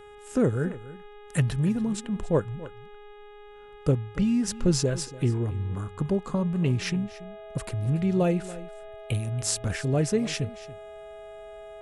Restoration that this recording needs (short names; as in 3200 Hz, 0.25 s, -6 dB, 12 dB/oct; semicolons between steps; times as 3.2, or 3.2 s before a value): de-hum 414.3 Hz, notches 9; notch 650 Hz, Q 30; inverse comb 0.284 s -17 dB